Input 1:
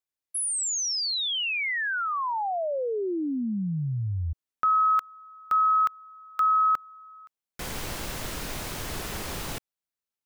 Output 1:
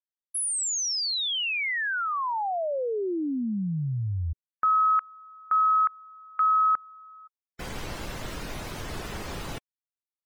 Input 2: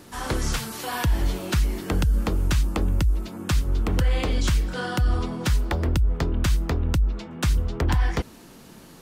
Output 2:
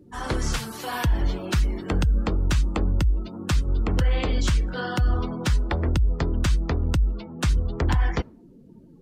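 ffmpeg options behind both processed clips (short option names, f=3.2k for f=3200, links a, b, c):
-af "afftdn=nr=29:nf=-42"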